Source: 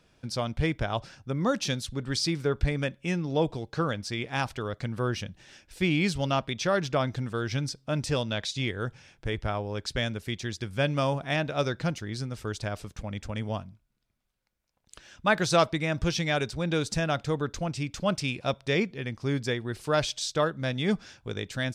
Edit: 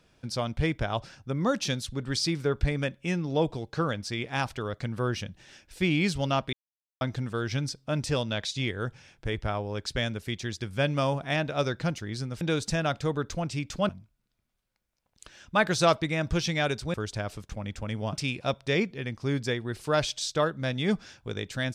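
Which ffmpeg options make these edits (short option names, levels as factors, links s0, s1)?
-filter_complex "[0:a]asplit=7[s0][s1][s2][s3][s4][s5][s6];[s0]atrim=end=6.53,asetpts=PTS-STARTPTS,afade=t=out:st=6.526:d=0.004:c=hsin[s7];[s1]atrim=start=6.53:end=7.01,asetpts=PTS-STARTPTS,volume=0[s8];[s2]atrim=start=7.01:end=12.412,asetpts=PTS-STARTPTS,afade=t=in:d=0.004:c=hsin[s9];[s3]atrim=start=16.648:end=18.132[s10];[s4]atrim=start=13.598:end=16.652[s11];[s5]atrim=start=12.408:end=13.602[s12];[s6]atrim=start=18.128[s13];[s7][s8][s9]concat=n=3:v=0:a=1[s14];[s14][s10]acrossfade=d=0.004:c1=hsin:c2=hsin[s15];[s15][s11]acrossfade=d=0.004:c1=hsin:c2=hsin[s16];[s16][s12]acrossfade=d=0.004:c1=hsin:c2=hsin[s17];[s17][s13]acrossfade=d=0.004:c1=hsin:c2=hsin"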